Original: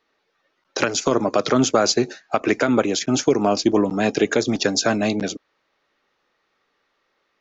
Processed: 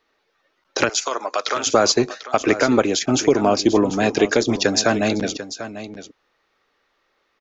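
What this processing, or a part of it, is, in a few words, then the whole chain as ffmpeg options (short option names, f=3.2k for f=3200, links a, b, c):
low shelf boost with a cut just above: -filter_complex "[0:a]asettb=1/sr,asplit=3[a][b][c];[a]atrim=end=0.894[d];[b]atrim=start=0.89:end=1.67,asetpts=PTS-STARTPTS,afade=t=in:d=0.004:c=qsin,afade=t=out:st=0.776:d=0.004:c=qsin,highpass=840[e];[c]atrim=start=1.666[f];[d][e]acrossfade=d=0.004:c1=hsin:c2=qsin[g];[g][f]acrossfade=d=0.004:c1=qsin:c2=hsin,lowshelf=f=82:g=6,equalizer=f=170:t=o:w=1.1:g=-4,aecho=1:1:743:0.224,volume=2dB"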